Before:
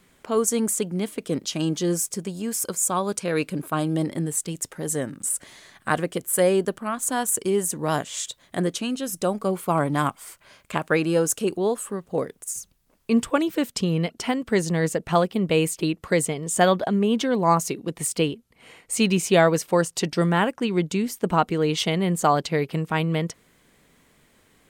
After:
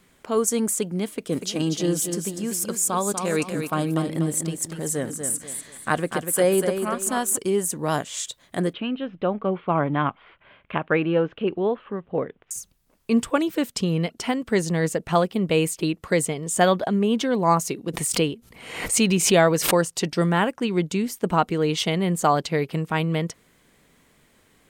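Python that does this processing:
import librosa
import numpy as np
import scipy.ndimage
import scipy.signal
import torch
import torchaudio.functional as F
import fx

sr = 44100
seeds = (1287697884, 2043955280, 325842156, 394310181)

y = fx.echo_feedback(x, sr, ms=243, feedback_pct=33, wet_db=-7, at=(1.31, 7.36), fade=0.02)
y = fx.steep_lowpass(y, sr, hz=3300.0, slope=48, at=(8.73, 12.51))
y = fx.pre_swell(y, sr, db_per_s=66.0, at=(17.92, 19.88), fade=0.02)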